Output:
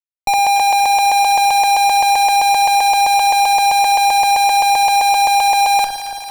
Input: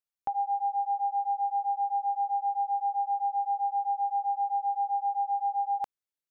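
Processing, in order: in parallel at +2 dB: negative-ratio compressor -39 dBFS, ratio -1; on the sum: fuzz box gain 59 dB, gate -54 dBFS; echo with dull and thin repeats by turns 0.112 s, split 970 Hz, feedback 85%, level -11 dB; added harmonics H 4 -20 dB, 8 -30 dB, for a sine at -8 dBFS

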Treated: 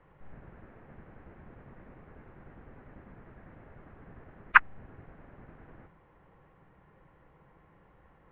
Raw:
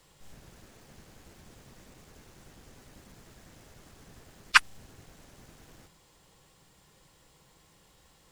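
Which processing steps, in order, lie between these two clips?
inverse Chebyshev low-pass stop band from 4900 Hz, stop band 50 dB; gain +3 dB

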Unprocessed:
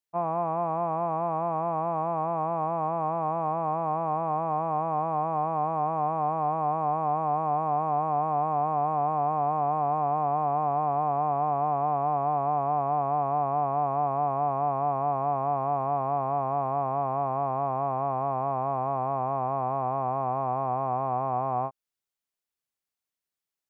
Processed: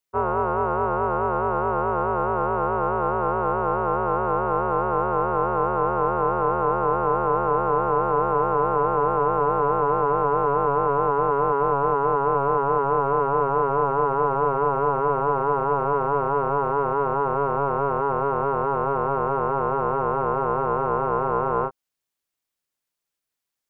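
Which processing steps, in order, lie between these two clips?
ring modulator 280 Hz; gain +8 dB

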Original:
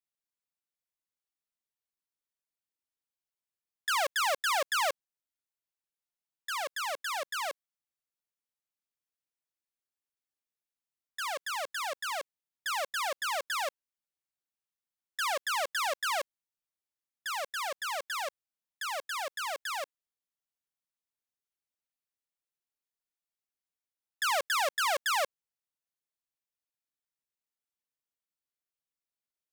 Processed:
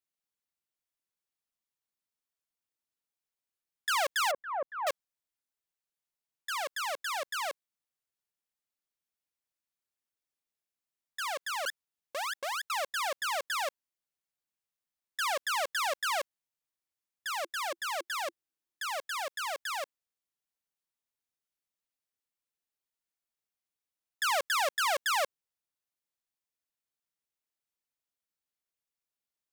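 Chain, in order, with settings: 4.31–4.87 Bessel low-pass 850 Hz, order 4; 11.66–12.7 reverse; 17.37–18.98 bell 340 Hz +11 dB 0.39 oct

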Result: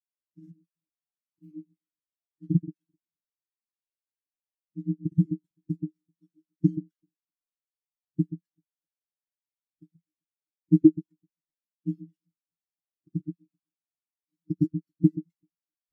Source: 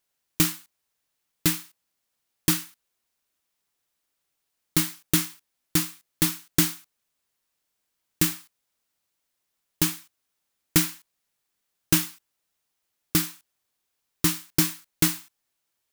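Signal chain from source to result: zero-crossing step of -24 dBFS; grains, pitch spread up and down by 0 st; echo with dull and thin repeats by turns 0.129 s, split 1000 Hz, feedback 58%, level -3.5 dB; spectral expander 4:1

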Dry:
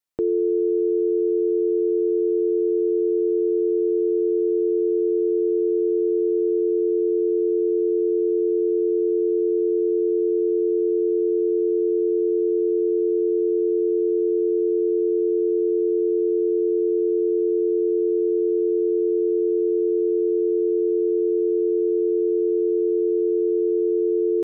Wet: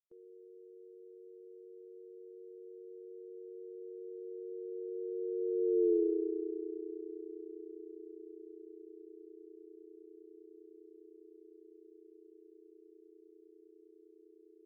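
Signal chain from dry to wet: Doppler pass-by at 9.87, 12 m/s, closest 4.6 m; granular stretch 0.6×, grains 67 ms; gain -6.5 dB

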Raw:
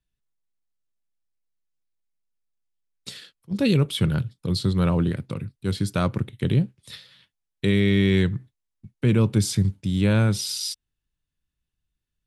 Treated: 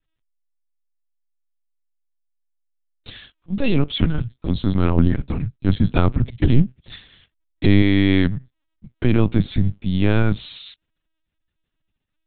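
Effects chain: 4.97–7.82 low shelf 190 Hz +7.5 dB; companded quantiser 8-bit; LPC vocoder at 8 kHz pitch kept; gain +3.5 dB

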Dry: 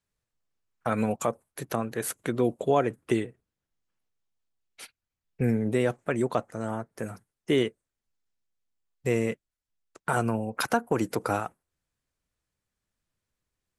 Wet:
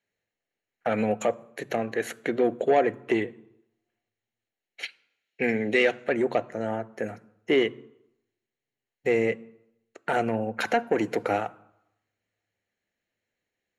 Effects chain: 4.83–6.09 weighting filter D; soft clip -18.5 dBFS, distortion -15 dB; reverb RT60 0.85 s, pre-delay 3 ms, DRR 18 dB; gain -5 dB

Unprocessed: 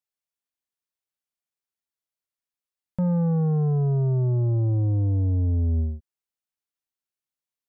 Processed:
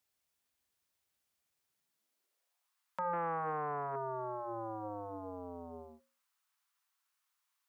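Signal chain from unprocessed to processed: high-pass sweep 61 Hz -> 1100 Hz, 1.49–2.75; in parallel at +1.5 dB: limiter -40.5 dBFS, peak gain reduction 10 dB; on the sum: notches 60/120/180/240/300/360/420/480/540 Hz; 3.13–3.96 Doppler distortion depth 0.2 ms; gain +1.5 dB

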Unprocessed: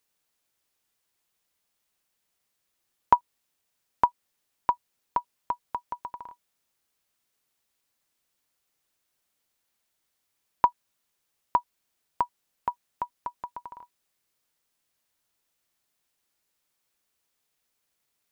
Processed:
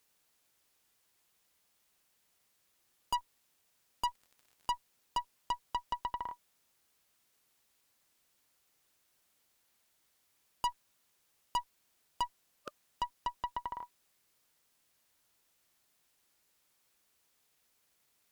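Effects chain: 12.3–12.78 spectral repair 600–1200 Hz after; tube stage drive 33 dB, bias 0.35; 4.07–4.72 crackle 58/s -53 dBFS; gain +5 dB

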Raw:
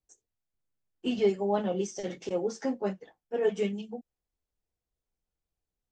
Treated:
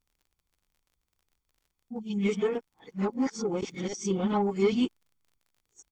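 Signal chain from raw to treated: whole clip reversed; in parallel at -5.5 dB: soft clip -25.5 dBFS, distortion -11 dB; on the sum: bell 640 Hz -6 dB 0.31 oct; comb 0.9 ms, depth 53%; crackle 38/s -53 dBFS

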